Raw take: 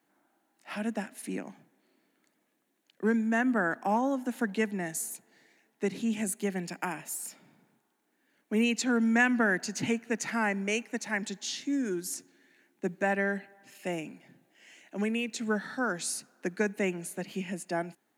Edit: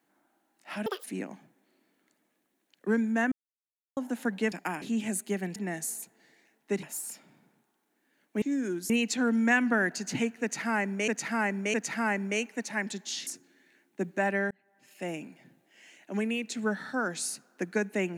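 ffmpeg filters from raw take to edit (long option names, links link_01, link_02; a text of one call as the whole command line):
ffmpeg -i in.wav -filter_complex "[0:a]asplit=15[link_01][link_02][link_03][link_04][link_05][link_06][link_07][link_08][link_09][link_10][link_11][link_12][link_13][link_14][link_15];[link_01]atrim=end=0.864[link_16];[link_02]atrim=start=0.86:end=1.2,asetpts=PTS-STARTPTS,asetrate=84231,aresample=44100,atrim=end_sample=7850,asetpts=PTS-STARTPTS[link_17];[link_03]atrim=start=1.196:end=3.48,asetpts=PTS-STARTPTS,afade=type=out:start_time=2.28:duration=0.004:curve=hsin[link_18];[link_04]atrim=start=3.48:end=4.13,asetpts=PTS-STARTPTS,volume=0[link_19];[link_05]atrim=start=4.13:end=4.682,asetpts=PTS-STARTPTS,afade=type=in:duration=0.004:curve=hsin[link_20];[link_06]atrim=start=6.688:end=6.992[link_21];[link_07]atrim=start=5.948:end=6.692[link_22];[link_08]atrim=start=4.678:end=5.952[link_23];[link_09]atrim=start=6.988:end=8.582[link_24];[link_10]atrim=start=11.628:end=12.112[link_25];[link_11]atrim=start=8.578:end=10.762[link_26];[link_12]atrim=start=10.098:end=10.762[link_27];[link_13]atrim=start=10.098:end=11.632[link_28];[link_14]atrim=start=12.108:end=13.35,asetpts=PTS-STARTPTS,afade=type=out:start_time=1.238:duration=0.004:curve=hsin[link_29];[link_15]atrim=start=13.35,asetpts=PTS-STARTPTS,afade=type=in:duration=0.69[link_30];[link_16][link_17]acrossfade=duration=0.004:curve1=hsin:curve2=hsin[link_31];[link_18][link_19][link_20]concat=n=3:v=0:a=1[link_32];[link_31][link_32]acrossfade=duration=0.004:curve1=hsin:curve2=hsin[link_33];[link_33][link_21]acrossfade=duration=0.004:curve1=hsin:curve2=hsin[link_34];[link_34][link_22]acrossfade=duration=0.004:curve1=hsin:curve2=hsin[link_35];[link_35][link_23]acrossfade=duration=0.004:curve1=hsin:curve2=hsin[link_36];[link_36][link_24]acrossfade=duration=0.004:curve1=hsin:curve2=hsin[link_37];[link_37][link_25]acrossfade=duration=0.004:curve1=hsin:curve2=hsin[link_38];[link_38][link_26]acrossfade=duration=0.004:curve1=hsin:curve2=hsin[link_39];[link_39][link_27]acrossfade=duration=0.004:curve1=hsin:curve2=hsin[link_40];[link_40][link_28]acrossfade=duration=0.004:curve1=hsin:curve2=hsin[link_41];[link_29][link_30]concat=n=2:v=0:a=1[link_42];[link_41][link_42]acrossfade=duration=0.004:curve1=hsin:curve2=hsin" out.wav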